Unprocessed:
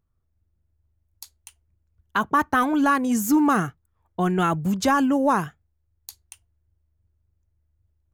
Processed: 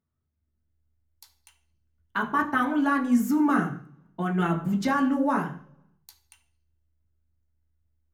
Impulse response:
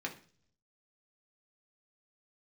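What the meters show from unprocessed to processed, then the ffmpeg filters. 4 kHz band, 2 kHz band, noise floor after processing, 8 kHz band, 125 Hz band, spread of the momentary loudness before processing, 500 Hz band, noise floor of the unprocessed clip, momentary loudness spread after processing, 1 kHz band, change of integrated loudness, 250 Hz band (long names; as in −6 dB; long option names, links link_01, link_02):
−7.0 dB, −2.5 dB, −78 dBFS, −11.5 dB, −2.0 dB, 8 LU, −6.0 dB, −72 dBFS, 11 LU, −5.0 dB, −3.5 dB, −2.0 dB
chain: -filter_complex "[1:a]atrim=start_sample=2205,asetrate=37044,aresample=44100[link_01];[0:a][link_01]afir=irnorm=-1:irlink=0,volume=-7dB"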